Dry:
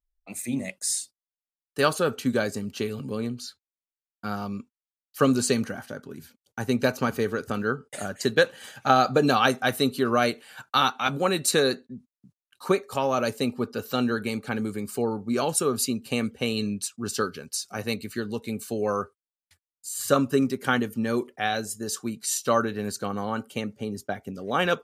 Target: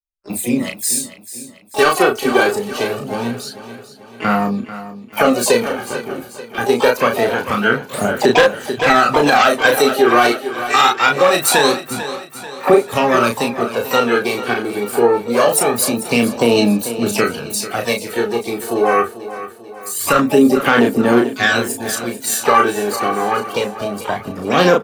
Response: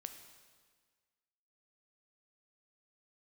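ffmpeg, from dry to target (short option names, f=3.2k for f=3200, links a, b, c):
-filter_complex "[0:a]agate=range=-34dB:threshold=-43dB:ratio=16:detection=peak,equalizer=f=6k:w=1.2:g=-7.5,acrossover=split=240|1400|5900[a][b][c][d];[a]acompressor=threshold=-43dB:ratio=10[e];[e][b][c][d]amix=inputs=4:normalize=0,asplit=3[f][g][h];[g]asetrate=66075,aresample=44100,atempo=0.66742,volume=-11dB[i];[h]asetrate=88200,aresample=44100,atempo=0.5,volume=-12dB[j];[f][i][j]amix=inputs=3:normalize=0,aeval=exprs='clip(val(0),-1,0.237)':c=same,aphaser=in_gain=1:out_gain=1:delay=2.7:decay=0.56:speed=0.24:type=sinusoidal,aeval=exprs='0.531*(abs(mod(val(0)/0.531+3,4)-2)-1)':c=same,asplit=2[k][l];[l]adelay=34,volume=-4.5dB[m];[k][m]amix=inputs=2:normalize=0,aecho=1:1:441|882|1323|1764|2205:0.2|0.0978|0.0479|0.0235|0.0115,alimiter=level_in=11dB:limit=-1dB:release=50:level=0:latency=1,volume=-1dB"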